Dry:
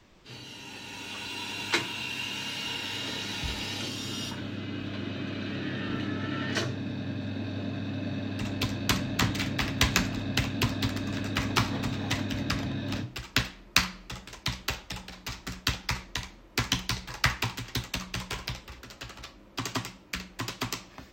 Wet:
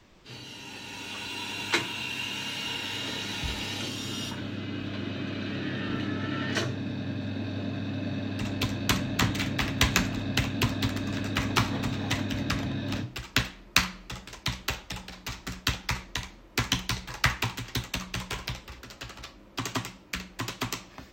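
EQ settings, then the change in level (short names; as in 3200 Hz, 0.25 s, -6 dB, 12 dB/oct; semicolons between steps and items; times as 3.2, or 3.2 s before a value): dynamic EQ 4900 Hz, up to -4 dB, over -49 dBFS, Q 5.4; +1.0 dB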